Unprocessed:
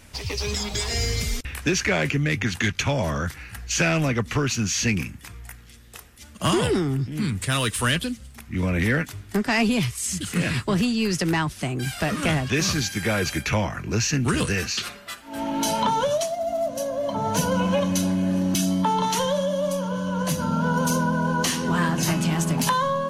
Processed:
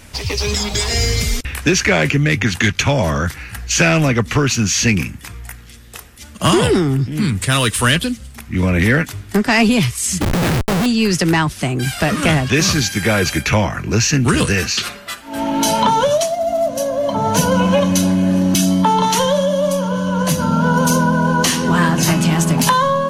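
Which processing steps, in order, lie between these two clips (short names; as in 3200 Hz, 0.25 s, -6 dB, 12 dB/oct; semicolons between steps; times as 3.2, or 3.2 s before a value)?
10.21–10.86 Schmitt trigger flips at -25.5 dBFS; gain +8 dB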